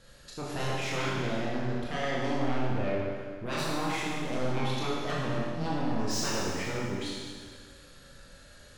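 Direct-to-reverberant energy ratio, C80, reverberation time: −5.5 dB, 0.5 dB, 1.8 s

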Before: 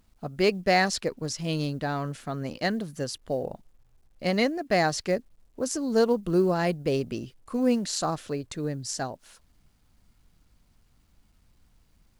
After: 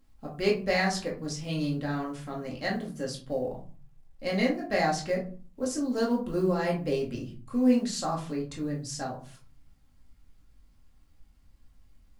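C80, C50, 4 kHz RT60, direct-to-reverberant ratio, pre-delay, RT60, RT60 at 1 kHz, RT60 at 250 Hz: 14.5 dB, 9.0 dB, 0.25 s, −3.0 dB, 4 ms, 0.45 s, 0.45 s, 0.65 s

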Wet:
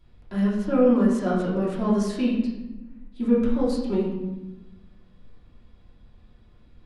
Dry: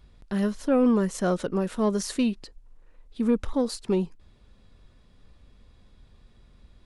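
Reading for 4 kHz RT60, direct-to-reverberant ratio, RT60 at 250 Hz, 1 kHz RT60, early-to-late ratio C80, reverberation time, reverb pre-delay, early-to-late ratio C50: 0.70 s, −9.0 dB, 1.7 s, 1.0 s, 4.5 dB, 1.1 s, 3 ms, 2.0 dB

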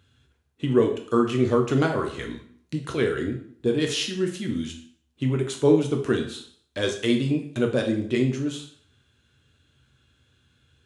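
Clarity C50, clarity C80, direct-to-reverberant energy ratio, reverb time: 8.5 dB, 12.0 dB, 2.5 dB, 0.55 s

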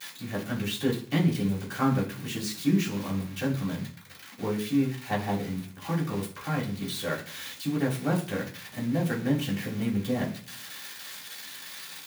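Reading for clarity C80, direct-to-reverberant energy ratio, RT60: 15.5 dB, −10.0 dB, 0.45 s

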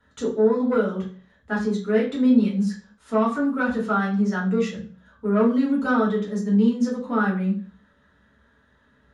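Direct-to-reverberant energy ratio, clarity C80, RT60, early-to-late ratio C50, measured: −5.0 dB, 13.0 dB, 0.45 s, 7.5 dB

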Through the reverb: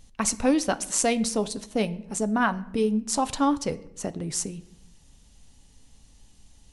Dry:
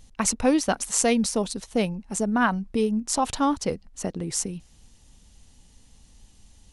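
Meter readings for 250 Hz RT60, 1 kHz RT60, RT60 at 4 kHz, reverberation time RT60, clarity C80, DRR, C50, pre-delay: 1.1 s, 0.75 s, 0.55 s, 0.85 s, 21.0 dB, 11.5 dB, 18.5 dB, 7 ms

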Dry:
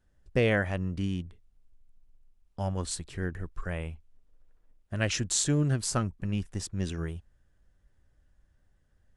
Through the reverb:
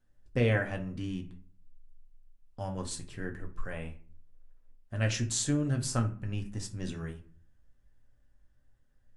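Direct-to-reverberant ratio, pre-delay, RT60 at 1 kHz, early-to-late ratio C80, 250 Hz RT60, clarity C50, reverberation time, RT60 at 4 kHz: 3.0 dB, 4 ms, 0.40 s, 18.0 dB, 0.55 s, 12.5 dB, 0.45 s, 0.25 s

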